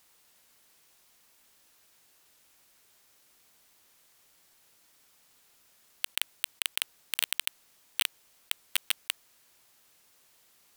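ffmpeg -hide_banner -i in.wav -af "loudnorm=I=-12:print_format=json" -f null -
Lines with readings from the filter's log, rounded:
"input_i" : "-32.8",
"input_tp" : "-11.0",
"input_lra" : "3.8",
"input_thresh" : "-47.2",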